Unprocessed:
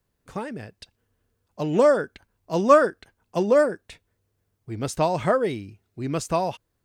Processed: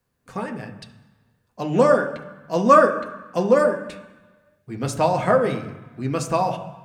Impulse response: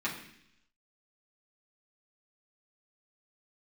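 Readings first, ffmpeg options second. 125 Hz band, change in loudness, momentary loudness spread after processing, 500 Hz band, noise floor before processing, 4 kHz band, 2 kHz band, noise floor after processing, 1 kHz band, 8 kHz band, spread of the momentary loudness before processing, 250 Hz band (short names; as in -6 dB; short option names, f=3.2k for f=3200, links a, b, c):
+3.5 dB, +2.0 dB, 21 LU, +2.0 dB, -75 dBFS, +1.0 dB, +3.5 dB, -70 dBFS, +5.0 dB, +1.5 dB, 18 LU, +2.5 dB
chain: -filter_complex "[0:a]asplit=2[a][b];[1:a]atrim=start_sample=2205,asetrate=28665,aresample=44100[c];[b][c]afir=irnorm=-1:irlink=0,volume=-9dB[d];[a][d]amix=inputs=2:normalize=0,volume=-1dB"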